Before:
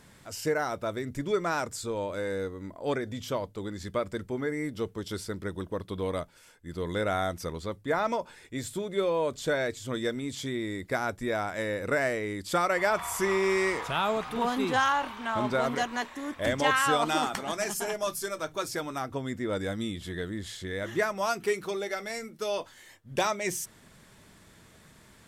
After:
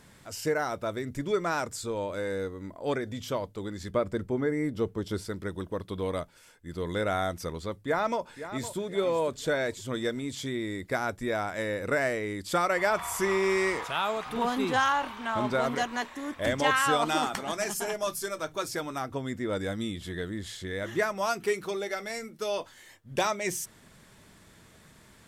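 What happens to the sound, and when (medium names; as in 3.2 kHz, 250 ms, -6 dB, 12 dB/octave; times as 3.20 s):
3.90–5.25 s: tilt shelf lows +4 dB, about 1.4 kHz
7.83–8.78 s: echo throw 510 ms, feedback 40%, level -12 dB
13.84–14.26 s: bass shelf 340 Hz -9.5 dB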